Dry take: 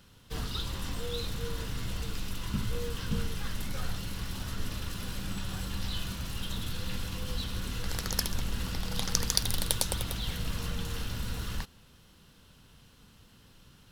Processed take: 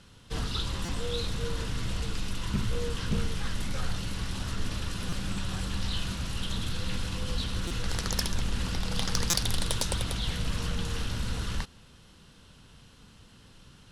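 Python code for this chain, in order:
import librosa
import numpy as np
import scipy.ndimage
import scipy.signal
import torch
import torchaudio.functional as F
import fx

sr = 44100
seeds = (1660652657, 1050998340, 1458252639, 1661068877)

y = scipy.signal.sosfilt(scipy.signal.butter(6, 11000.0, 'lowpass', fs=sr, output='sos'), x)
y = 10.0 ** (-18.5 / 20.0) * np.tanh(y / 10.0 ** (-18.5 / 20.0))
y = fx.buffer_glitch(y, sr, at_s=(0.85, 5.09, 7.67, 9.3), block=256, repeats=5)
y = fx.doppler_dist(y, sr, depth_ms=0.3)
y = y * librosa.db_to_amplitude(3.5)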